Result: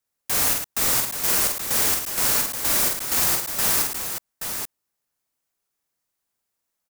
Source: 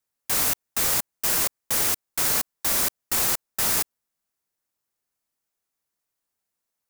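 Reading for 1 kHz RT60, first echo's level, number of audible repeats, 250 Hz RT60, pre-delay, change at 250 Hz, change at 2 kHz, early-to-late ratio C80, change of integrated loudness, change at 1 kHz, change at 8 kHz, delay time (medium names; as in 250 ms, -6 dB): no reverb, -3.5 dB, 3, no reverb, no reverb, +3.0 dB, +2.5 dB, no reverb, +2.0 dB, +2.5 dB, +2.5 dB, 47 ms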